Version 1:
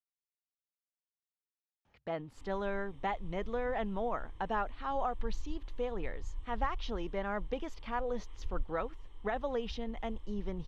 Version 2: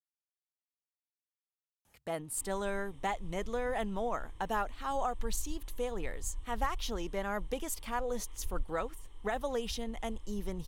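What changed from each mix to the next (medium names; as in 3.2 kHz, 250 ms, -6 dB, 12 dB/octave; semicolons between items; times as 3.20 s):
speech: remove boxcar filter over 5 samples; master: remove distance through air 100 m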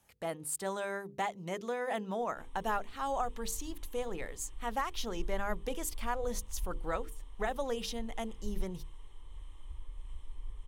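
speech: entry -1.85 s; master: add hum notches 50/100/150/200/250/300/350/400/450/500 Hz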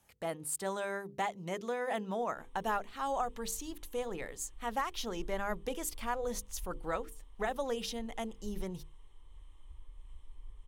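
background -6.5 dB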